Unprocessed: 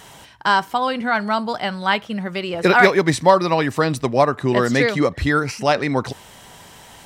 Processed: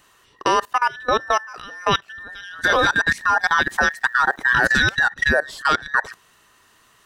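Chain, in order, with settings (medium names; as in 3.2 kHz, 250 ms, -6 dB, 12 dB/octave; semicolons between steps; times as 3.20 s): every band turned upside down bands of 2 kHz; level held to a coarse grid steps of 20 dB; 3.17–4.74 s: crackle 540 per s -51 dBFS; trim +3.5 dB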